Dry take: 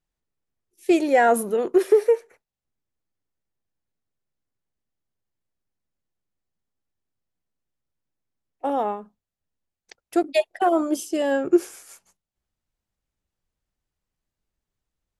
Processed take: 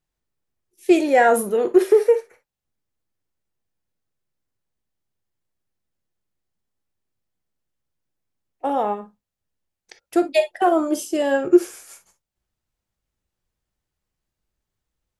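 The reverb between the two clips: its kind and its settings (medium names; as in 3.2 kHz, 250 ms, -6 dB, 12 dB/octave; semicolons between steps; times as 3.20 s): gated-style reverb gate 80 ms flat, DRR 8.5 dB; trim +2 dB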